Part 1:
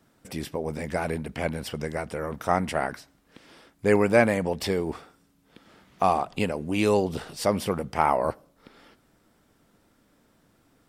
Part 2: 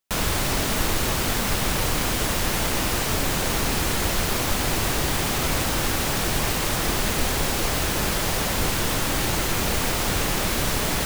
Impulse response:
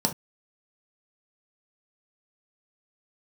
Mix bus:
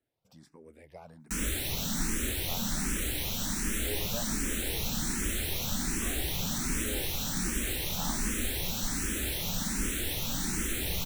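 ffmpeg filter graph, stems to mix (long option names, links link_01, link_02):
-filter_complex "[0:a]volume=-19dB[link_01];[1:a]equalizer=frequency=710:width=0.62:gain=-14.5,adelay=1200,volume=-4dB,asplit=2[link_02][link_03];[link_03]volume=-17.5dB[link_04];[2:a]atrim=start_sample=2205[link_05];[link_04][link_05]afir=irnorm=-1:irlink=0[link_06];[link_01][link_02][link_06]amix=inputs=3:normalize=0,asplit=2[link_07][link_08];[link_08]afreqshift=1.3[link_09];[link_07][link_09]amix=inputs=2:normalize=1"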